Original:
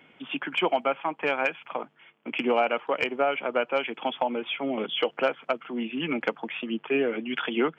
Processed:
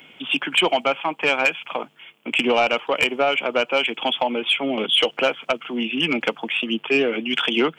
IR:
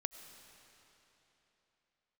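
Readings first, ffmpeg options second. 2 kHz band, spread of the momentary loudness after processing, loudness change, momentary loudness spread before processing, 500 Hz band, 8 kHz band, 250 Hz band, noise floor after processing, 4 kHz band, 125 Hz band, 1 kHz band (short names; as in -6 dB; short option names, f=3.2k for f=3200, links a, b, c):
+8.5 dB, 7 LU, +7.0 dB, 9 LU, +4.5 dB, n/a, +5.0 dB, -52 dBFS, +13.0 dB, +5.5 dB, +4.5 dB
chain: -af "aexciter=amount=3.2:drive=4.5:freq=2.5k,aeval=exprs='0.447*sin(PI/2*1.78*val(0)/0.447)':c=same,volume=-3.5dB"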